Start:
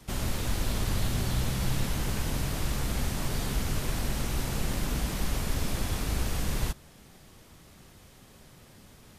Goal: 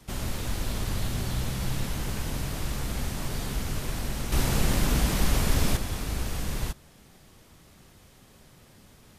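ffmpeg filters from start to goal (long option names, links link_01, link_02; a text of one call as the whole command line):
ffmpeg -i in.wav -filter_complex "[0:a]asettb=1/sr,asplit=3[link_01][link_02][link_03];[link_01]atrim=end=4.324[link_04];[link_02]atrim=start=4.32:end=5.77,asetpts=PTS-STARTPTS,afade=type=in:duration=0.004:curve=qsin,afade=type=out:start_time=1.446:duration=0.004:curve=qsin,acontrast=84[link_05];[link_03]atrim=start=5.766[link_06];[link_04][link_05]acrossfade=duration=0.004:curve1=hsin:curve2=qsin[link_07];[link_07][link_06]acrossfade=duration=0.004:curve1=qsin:curve2=hsin,volume=-1dB" out.wav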